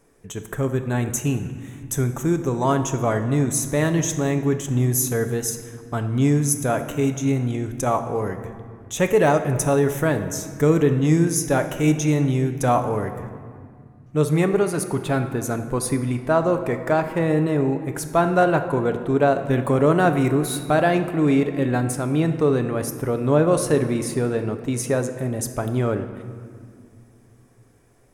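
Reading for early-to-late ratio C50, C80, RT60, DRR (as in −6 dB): 9.5 dB, 10.5 dB, 2.0 s, 7.0 dB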